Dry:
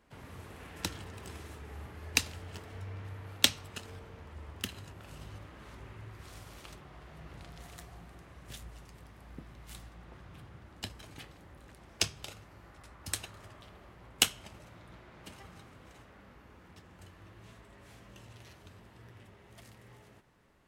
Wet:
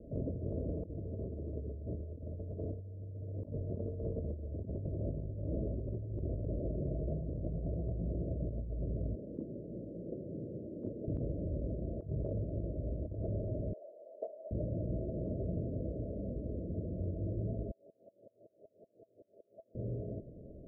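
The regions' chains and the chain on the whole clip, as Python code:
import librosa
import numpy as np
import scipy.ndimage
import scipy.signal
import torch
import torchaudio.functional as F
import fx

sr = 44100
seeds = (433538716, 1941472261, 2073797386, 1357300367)

y = fx.chain(x, sr, fx.highpass(hz=250.0, slope=12),
    fx.peak_eq(hz=670.0, db=-11.0, octaves=0.26), at=(9.15, 11.08))
y = fx.chain(y, sr, fx.highpass(hz=690.0, slope=24),
    fx.peak_eq(hz=1200.0, db=11.5, octaves=0.76), at=(13.73, 14.51))
y = fx.chain(y, sr, fx.highpass(hz=710.0, slope=12),
    fx.tremolo_decay(direction='swelling', hz=5.3, depth_db=33), at=(17.71, 19.75))
y = scipy.signal.sosfilt(scipy.signal.cheby1(10, 1.0, 660.0, 'lowpass', fs=sr, output='sos'), y)
y = fx.over_compress(y, sr, threshold_db=-53.0, ratio=-1.0)
y = y * librosa.db_to_amplitude(15.0)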